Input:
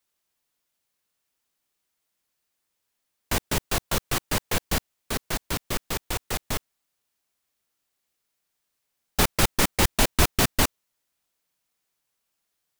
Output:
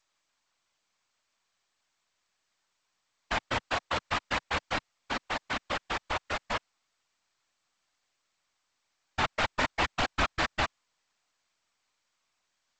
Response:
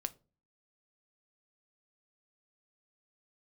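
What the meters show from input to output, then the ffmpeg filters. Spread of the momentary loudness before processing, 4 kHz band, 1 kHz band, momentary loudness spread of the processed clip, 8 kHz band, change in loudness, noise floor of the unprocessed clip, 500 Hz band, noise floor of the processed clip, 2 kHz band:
9 LU, −6.0 dB, −0.5 dB, 6 LU, −18.0 dB, −6.0 dB, −79 dBFS, −5.5 dB, −80 dBFS, −1.0 dB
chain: -filter_complex "[0:a]asplit=2[link_01][link_02];[link_02]highpass=frequency=720:poles=1,volume=20dB,asoftclip=type=tanh:threshold=-5dB[link_03];[link_01][link_03]amix=inputs=2:normalize=0,lowpass=frequency=1400:poles=1,volume=-6dB,afftfilt=real='hypot(re,im)*cos(2*PI*random(0))':imag='hypot(re,im)*sin(2*PI*random(1))':win_size=512:overlap=0.75,equalizer=frequency=160:width_type=o:width=0.67:gain=-8,equalizer=frequency=400:width_type=o:width=0.67:gain=-10,equalizer=frequency=6300:width_type=o:width=0.67:gain=-7" -ar 16000 -c:a g722

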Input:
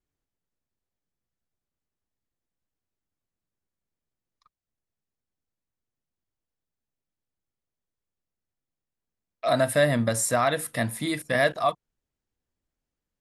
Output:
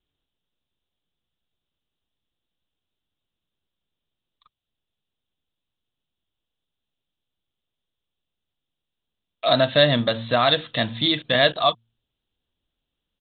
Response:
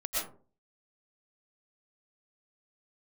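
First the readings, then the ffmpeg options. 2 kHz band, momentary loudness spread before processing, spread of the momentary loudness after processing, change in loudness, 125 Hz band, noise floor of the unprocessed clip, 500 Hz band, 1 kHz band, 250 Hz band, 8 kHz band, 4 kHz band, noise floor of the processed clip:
+3.0 dB, 7 LU, 7 LU, +4.5 dB, +2.5 dB, below −85 dBFS, +3.5 dB, +3.5 dB, +3.0 dB, below −40 dB, +14.5 dB, −84 dBFS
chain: -af "bandreject=frequency=114.5:width_type=h:width=4,bandreject=frequency=229:width_type=h:width=4,aexciter=amount=8.8:drive=3.6:freq=3100,aresample=8000,aresample=44100,volume=3.5dB"

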